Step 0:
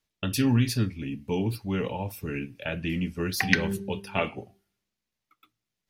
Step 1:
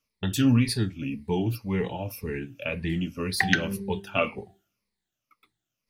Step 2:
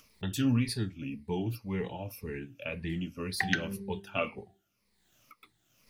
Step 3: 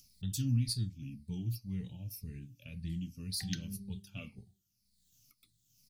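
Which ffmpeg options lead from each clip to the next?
-af "afftfilt=real='re*pow(10,12/40*sin(2*PI*(0.9*log(max(b,1)*sr/1024/100)/log(2)-(-1.9)*(pts-256)/sr)))':imag='im*pow(10,12/40*sin(2*PI*(0.9*log(max(b,1)*sr/1024/100)/log(2)-(-1.9)*(pts-256)/sr)))':win_size=1024:overlap=0.75,volume=-1dB"
-af "acompressor=mode=upward:threshold=-37dB:ratio=2.5,volume=-6.5dB"
-af "firequalizer=gain_entry='entry(140,0);entry(390,-21);entry(950,-28);entry(4500,1)':delay=0.05:min_phase=1"

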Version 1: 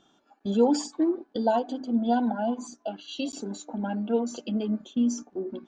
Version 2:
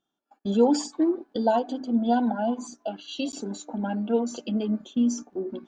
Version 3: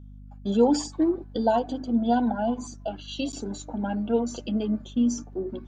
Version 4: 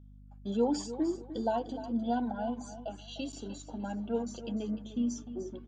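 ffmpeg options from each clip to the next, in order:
-af "agate=range=-21dB:threshold=-59dB:ratio=16:detection=peak,volume=1.5dB"
-af "aeval=exprs='val(0)+0.00708*(sin(2*PI*50*n/s)+sin(2*PI*2*50*n/s)/2+sin(2*PI*3*50*n/s)/3+sin(2*PI*4*50*n/s)/4+sin(2*PI*5*50*n/s)/5)':c=same"
-af "aecho=1:1:301|602|903:0.224|0.0604|0.0163,volume=-8.5dB"

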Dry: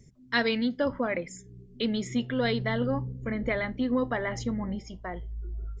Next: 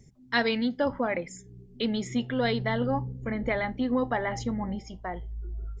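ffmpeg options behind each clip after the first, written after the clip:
-af "equalizer=f=810:t=o:w=0.27:g=8.5"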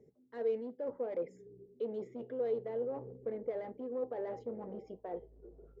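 -af "areverse,acompressor=threshold=-33dB:ratio=12,areverse,asoftclip=type=hard:threshold=-34dB,bandpass=f=460:t=q:w=5.1:csg=0,volume=9.5dB"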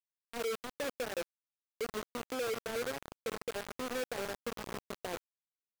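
-af "acompressor=threshold=-45dB:ratio=2.5,acrusher=bits=6:mix=0:aa=0.000001,volume=5dB"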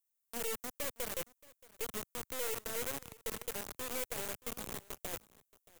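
-filter_complex "[0:a]acrossover=split=110|1600[a][b][c];[c]aexciter=amount=4.9:drive=4.6:freq=6.2k[d];[a][b][d]amix=inputs=3:normalize=0,aeval=exprs='clip(val(0),-1,0.0075)':c=same,aecho=1:1:626:0.0841,volume=-2dB"

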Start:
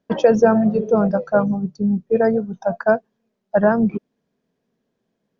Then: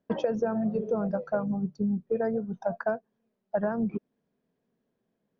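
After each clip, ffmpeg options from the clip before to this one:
-af "lowpass=f=2.6k:p=1,acompressor=threshold=-20dB:ratio=6,volume=-4.5dB"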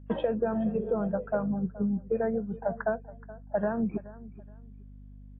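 -af "aeval=exprs='val(0)+0.00501*(sin(2*PI*50*n/s)+sin(2*PI*2*50*n/s)/2+sin(2*PI*3*50*n/s)/3+sin(2*PI*4*50*n/s)/4+sin(2*PI*5*50*n/s)/5)':c=same,aecho=1:1:424|848:0.119|0.0297" -ar 8000 -c:a libmp3lame -b:a 16k

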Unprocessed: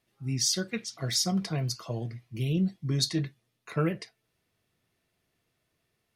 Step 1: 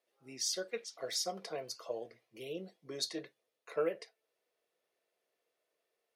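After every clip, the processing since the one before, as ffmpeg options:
-af "highpass=f=500:t=q:w=3.4,volume=-8.5dB"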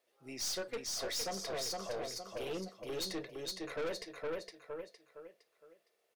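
-af "aecho=1:1:462|924|1386|1848:0.562|0.191|0.065|0.0221,aeval=exprs='(tanh(100*val(0)+0.35)-tanh(0.35))/100':c=same,volume=5.5dB"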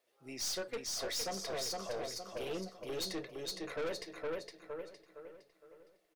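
-filter_complex "[0:a]asplit=2[a][b];[b]adelay=1015,lowpass=f=1.6k:p=1,volume=-17dB,asplit=2[c][d];[d]adelay=1015,lowpass=f=1.6k:p=1,volume=0.25[e];[a][c][e]amix=inputs=3:normalize=0"

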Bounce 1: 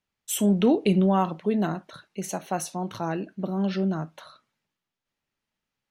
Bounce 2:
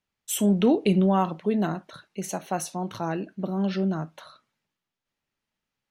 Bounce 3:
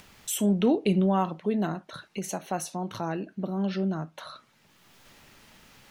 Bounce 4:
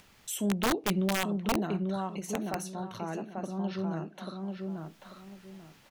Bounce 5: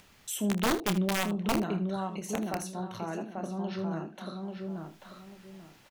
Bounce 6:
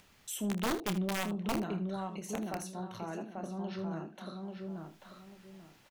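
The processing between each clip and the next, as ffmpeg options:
-af anull
-af "acompressor=mode=upward:threshold=-26dB:ratio=2.5,volume=-2.5dB"
-filter_complex "[0:a]asplit=2[a][b];[b]adelay=840,lowpass=f=2.3k:p=1,volume=-3.5dB,asplit=2[c][d];[d]adelay=840,lowpass=f=2.3k:p=1,volume=0.26,asplit=2[e][f];[f]adelay=840,lowpass=f=2.3k:p=1,volume=0.26,asplit=2[g][h];[h]adelay=840,lowpass=f=2.3k:p=1,volume=0.26[i];[a][c][e][g][i]amix=inputs=5:normalize=0,aeval=exprs='(mod(5.62*val(0)+1,2)-1)/5.62':c=same,volume=-5.5dB"
-af "aecho=1:1:28|78:0.316|0.188"
-af "asoftclip=type=tanh:threshold=-19.5dB,volume=-4dB"

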